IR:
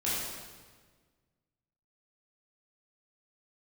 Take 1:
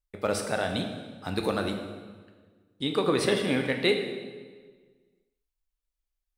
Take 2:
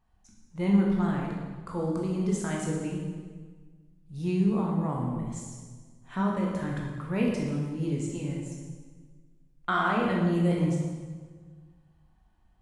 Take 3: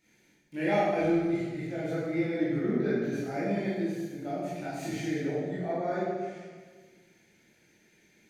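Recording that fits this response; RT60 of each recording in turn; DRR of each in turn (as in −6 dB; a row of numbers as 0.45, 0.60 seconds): 3; 1.5, 1.5, 1.5 seconds; 4.5, −2.5, −9.5 decibels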